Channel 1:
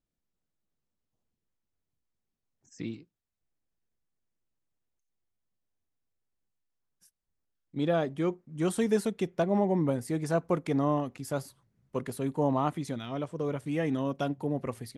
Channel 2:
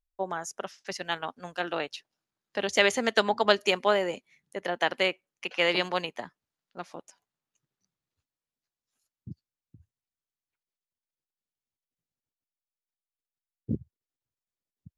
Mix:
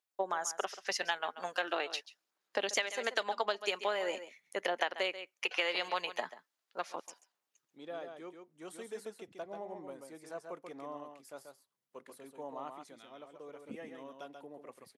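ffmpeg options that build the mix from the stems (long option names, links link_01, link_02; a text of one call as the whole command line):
ffmpeg -i stem1.wav -i stem2.wav -filter_complex "[0:a]acontrast=48,volume=-19.5dB,asplit=3[link_01][link_02][link_03];[link_02]volume=-6dB[link_04];[1:a]aphaser=in_gain=1:out_gain=1:delay=4.8:decay=0.3:speed=0.41:type=sinusoidal,volume=3dB,asplit=2[link_05][link_06];[link_06]volume=-17dB[link_07];[link_03]apad=whole_len=660269[link_08];[link_05][link_08]sidechaincompress=threshold=-50dB:ratio=8:attack=21:release=688[link_09];[link_04][link_07]amix=inputs=2:normalize=0,aecho=0:1:136:1[link_10];[link_01][link_09][link_10]amix=inputs=3:normalize=0,highpass=450,acompressor=threshold=-29dB:ratio=12" out.wav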